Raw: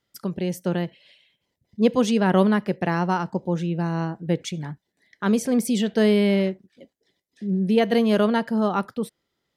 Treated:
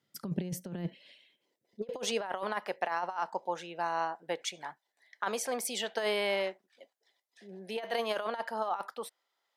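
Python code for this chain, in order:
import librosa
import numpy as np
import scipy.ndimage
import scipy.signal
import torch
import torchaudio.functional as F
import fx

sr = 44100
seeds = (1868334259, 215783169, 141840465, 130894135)

y = fx.filter_sweep_highpass(x, sr, from_hz=150.0, to_hz=800.0, start_s=0.59, end_s=2.34, q=1.8)
y = fx.over_compress(y, sr, threshold_db=-25.0, ratio=-0.5)
y = y * librosa.db_to_amplitude(-6.5)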